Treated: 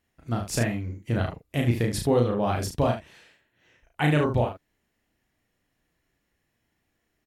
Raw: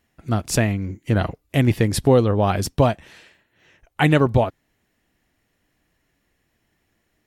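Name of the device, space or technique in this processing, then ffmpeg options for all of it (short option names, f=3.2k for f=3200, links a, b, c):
slapback doubling: -filter_complex "[0:a]asplit=3[a][b][c];[b]adelay=34,volume=-3dB[d];[c]adelay=74,volume=-8.5dB[e];[a][d][e]amix=inputs=3:normalize=0,volume=-8dB"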